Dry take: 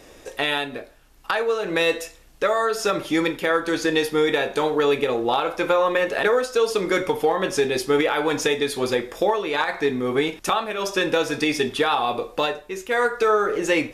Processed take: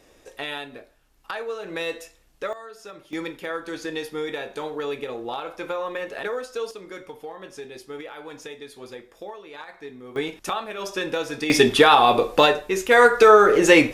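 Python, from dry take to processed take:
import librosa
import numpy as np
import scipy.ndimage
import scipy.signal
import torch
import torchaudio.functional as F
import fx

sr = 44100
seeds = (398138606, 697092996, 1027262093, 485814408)

y = fx.gain(x, sr, db=fx.steps((0.0, -8.5), (2.53, -19.0), (3.13, -9.5), (6.71, -17.0), (10.16, -5.5), (11.5, 7.0)))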